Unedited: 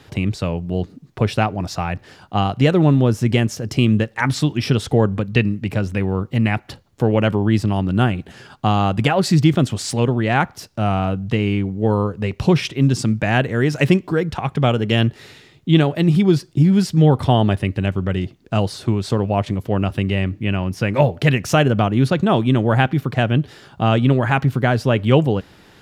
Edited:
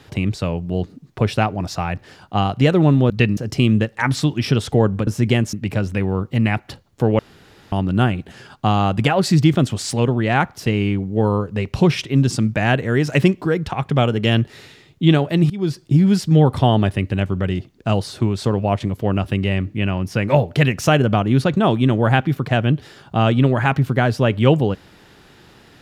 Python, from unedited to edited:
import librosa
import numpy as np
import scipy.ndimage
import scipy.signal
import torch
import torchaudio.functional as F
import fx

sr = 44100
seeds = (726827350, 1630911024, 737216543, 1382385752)

y = fx.edit(x, sr, fx.swap(start_s=3.1, length_s=0.46, other_s=5.26, other_length_s=0.27),
    fx.room_tone_fill(start_s=7.19, length_s=0.53),
    fx.cut(start_s=10.66, length_s=0.66),
    fx.fade_in_from(start_s=16.16, length_s=0.34, floor_db=-21.0), tone=tone)